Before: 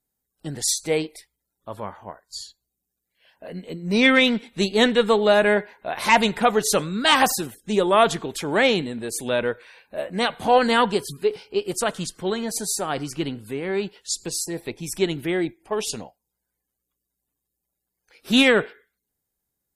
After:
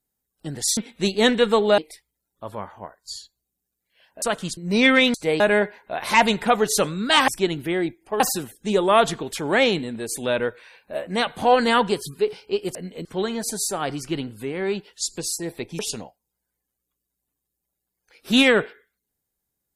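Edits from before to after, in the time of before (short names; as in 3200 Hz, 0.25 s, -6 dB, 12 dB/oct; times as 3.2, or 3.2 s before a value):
0.77–1.03 swap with 4.34–5.35
3.47–3.77 swap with 11.78–12.13
14.87–15.79 move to 7.23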